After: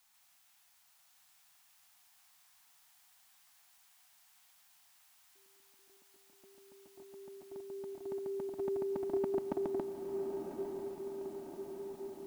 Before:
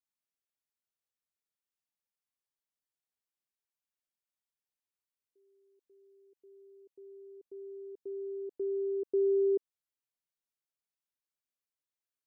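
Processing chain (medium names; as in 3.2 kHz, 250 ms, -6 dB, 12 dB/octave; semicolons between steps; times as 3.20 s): chunks repeated in reverse 140 ms, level -1 dB; FFT filter 200 Hz 0 dB, 320 Hz -9 dB, 460 Hz -28 dB, 710 Hz +11 dB, 1.2 kHz +9 dB; echo that smears into a reverb 1000 ms, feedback 67%, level -4.5 dB; trim +14.5 dB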